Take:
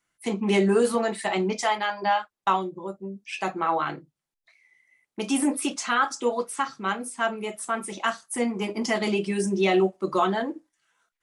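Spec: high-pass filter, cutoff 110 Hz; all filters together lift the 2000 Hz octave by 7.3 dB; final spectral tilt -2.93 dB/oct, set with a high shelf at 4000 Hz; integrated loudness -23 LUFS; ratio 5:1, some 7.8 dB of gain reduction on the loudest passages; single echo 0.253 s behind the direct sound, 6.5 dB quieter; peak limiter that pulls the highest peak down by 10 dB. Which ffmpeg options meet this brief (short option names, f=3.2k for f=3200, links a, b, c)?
-af "highpass=110,equalizer=f=2k:t=o:g=7.5,highshelf=f=4k:g=8,acompressor=threshold=-23dB:ratio=5,alimiter=limit=-20dB:level=0:latency=1,aecho=1:1:253:0.473,volume=6.5dB"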